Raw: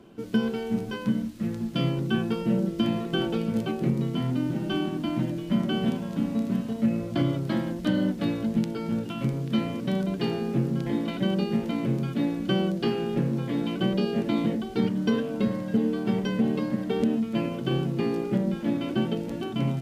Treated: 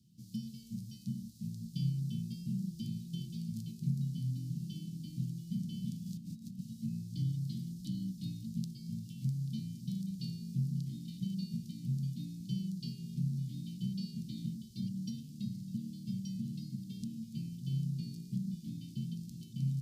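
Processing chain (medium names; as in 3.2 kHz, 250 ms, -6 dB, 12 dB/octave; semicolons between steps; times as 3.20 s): high-pass 100 Hz; 6.06–6.59 s: compressor with a negative ratio -32 dBFS, ratio -1; elliptic band-stop 160–4600 Hz, stop band 60 dB; trim -4 dB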